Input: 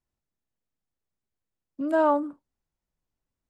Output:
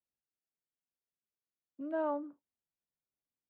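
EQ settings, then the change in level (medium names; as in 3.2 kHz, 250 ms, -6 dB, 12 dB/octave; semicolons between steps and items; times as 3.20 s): high-pass 350 Hz 6 dB/octave; distance through air 450 m; peaking EQ 1.1 kHz -5.5 dB 1.3 oct; -7.0 dB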